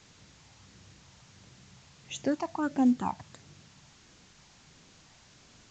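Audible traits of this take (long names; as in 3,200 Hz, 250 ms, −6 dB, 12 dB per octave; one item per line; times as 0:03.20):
phaser sweep stages 8, 1.5 Hz, lowest notch 410–1,400 Hz
a quantiser's noise floor 10 bits, dither triangular
A-law companding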